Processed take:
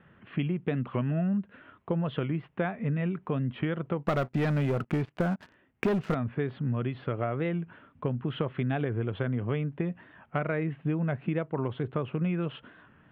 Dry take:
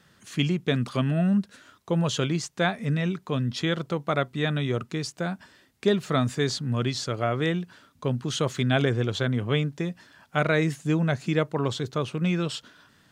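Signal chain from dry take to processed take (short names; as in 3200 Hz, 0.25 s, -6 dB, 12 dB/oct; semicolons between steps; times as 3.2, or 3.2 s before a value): steep low-pass 3000 Hz 48 dB/oct; high shelf 2000 Hz -8 dB; 4.03–6.15 sample leveller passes 3; compressor 6:1, threshold -29 dBFS, peak gain reduction 14 dB; record warp 45 rpm, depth 100 cents; gain +3 dB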